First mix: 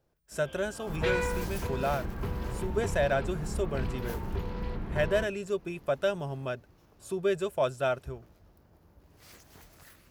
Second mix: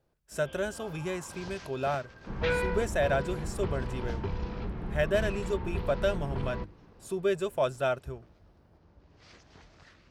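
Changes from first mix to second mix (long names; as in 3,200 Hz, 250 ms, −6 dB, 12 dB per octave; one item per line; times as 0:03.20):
first sound: add low-pass filter 5,500 Hz 24 dB per octave
second sound: entry +1.40 s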